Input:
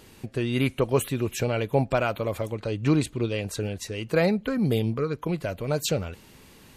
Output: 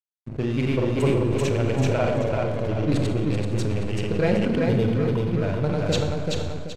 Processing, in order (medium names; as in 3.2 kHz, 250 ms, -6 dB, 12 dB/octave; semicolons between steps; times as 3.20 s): peaking EQ 110 Hz +4 dB 2.3 oct; band-stop 1.2 kHz, Q 9.2; in parallel at -3 dB: compression, threshold -30 dBFS, peak gain reduction 15 dB; on the sum: flange 1.5 Hz, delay 9.5 ms, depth 3.8 ms, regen -76%; granulator; hysteresis with a dead band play -32 dBFS; distance through air 51 m; feedback delay 384 ms, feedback 34%, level -3 dB; on a send at -5.5 dB: reverberation RT60 1.1 s, pre-delay 31 ms; on the sum: decay stretcher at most 21 dB/s; trim +2.5 dB